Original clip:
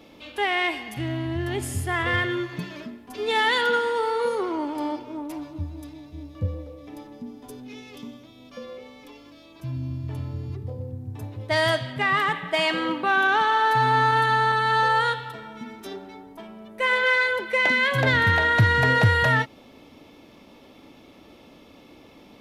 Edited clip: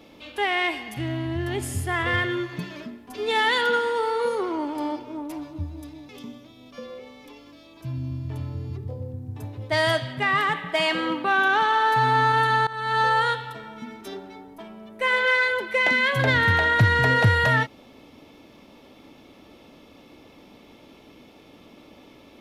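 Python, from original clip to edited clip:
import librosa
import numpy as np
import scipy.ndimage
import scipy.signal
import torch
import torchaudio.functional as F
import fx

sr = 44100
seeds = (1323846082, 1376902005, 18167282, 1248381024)

y = fx.edit(x, sr, fx.cut(start_s=6.09, length_s=1.79),
    fx.fade_in_from(start_s=14.46, length_s=0.35, floor_db=-20.5), tone=tone)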